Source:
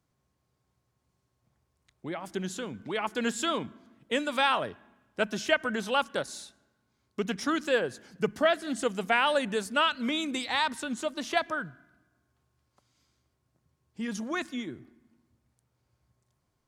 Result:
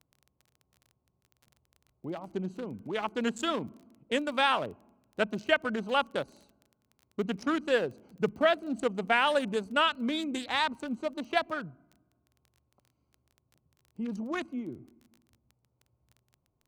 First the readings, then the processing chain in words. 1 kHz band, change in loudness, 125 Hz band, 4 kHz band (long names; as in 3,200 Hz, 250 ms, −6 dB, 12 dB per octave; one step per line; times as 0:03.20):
−0.5 dB, −1.0 dB, 0.0 dB, −2.0 dB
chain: adaptive Wiener filter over 25 samples
surface crackle 18 per second −44 dBFS